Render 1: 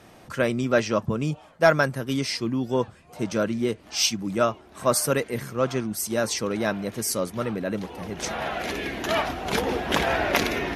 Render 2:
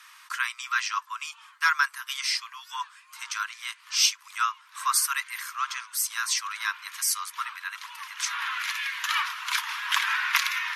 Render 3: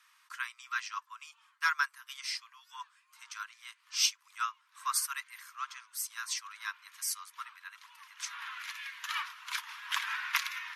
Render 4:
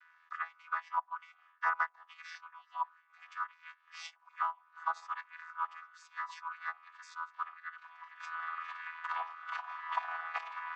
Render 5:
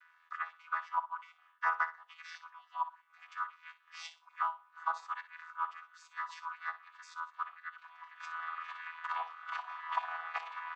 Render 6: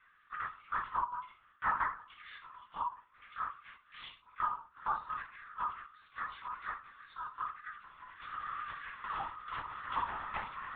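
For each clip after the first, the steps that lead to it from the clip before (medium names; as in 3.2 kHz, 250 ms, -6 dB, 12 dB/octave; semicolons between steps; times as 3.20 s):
steep high-pass 980 Hz 96 dB/octave; in parallel at -1.5 dB: compression, threshold -36 dBFS, peak gain reduction 17 dB
upward expansion 1.5:1, over -36 dBFS; trim -5.5 dB
vocoder on a held chord bare fifth, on E3; auto-wah 750–1600 Hz, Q 2.4, down, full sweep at -32 dBFS; trim +6.5 dB
feedback delay 61 ms, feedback 24%, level -13 dB
reverberation RT60 0.35 s, pre-delay 4 ms, DRR -1 dB; LPC vocoder at 8 kHz whisper; trim -2.5 dB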